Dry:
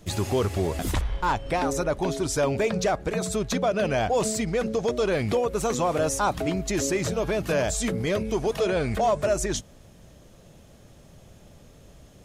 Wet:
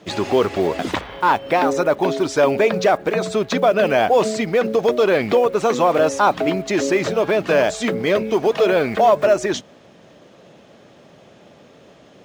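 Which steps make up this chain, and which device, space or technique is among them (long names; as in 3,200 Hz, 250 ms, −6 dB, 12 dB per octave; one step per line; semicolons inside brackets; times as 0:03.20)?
early digital voice recorder (band-pass filter 250–3,800 Hz; one scale factor per block 7 bits)
level +9 dB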